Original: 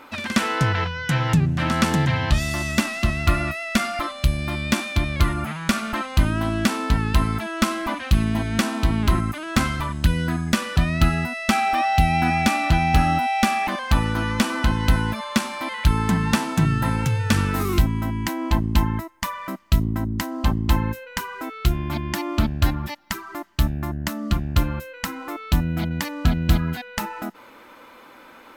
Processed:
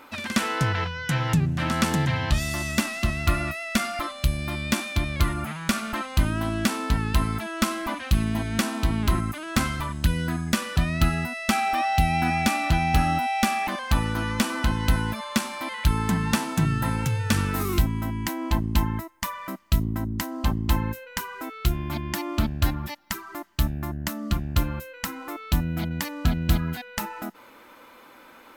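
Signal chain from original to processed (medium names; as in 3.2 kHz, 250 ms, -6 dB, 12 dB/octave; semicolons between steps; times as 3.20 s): treble shelf 7.7 kHz +6 dB; trim -3.5 dB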